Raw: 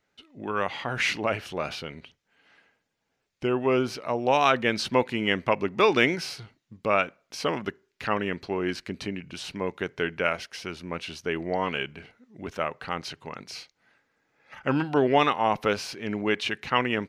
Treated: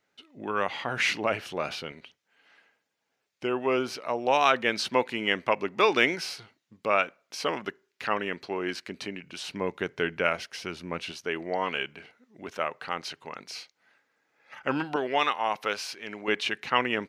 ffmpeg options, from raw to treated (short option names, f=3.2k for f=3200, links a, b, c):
-af "asetnsamples=n=441:p=0,asendcmd='1.92 highpass f 390;9.52 highpass f 100;11.12 highpass f 390;14.96 highpass f 1000;16.28 highpass f 290',highpass=f=180:p=1"